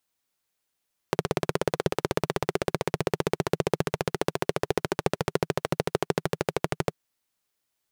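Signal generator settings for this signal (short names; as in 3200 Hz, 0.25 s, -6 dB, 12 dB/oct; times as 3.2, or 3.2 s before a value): single-cylinder engine model, changing speed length 5.81 s, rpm 2000, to 1500, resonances 160/400 Hz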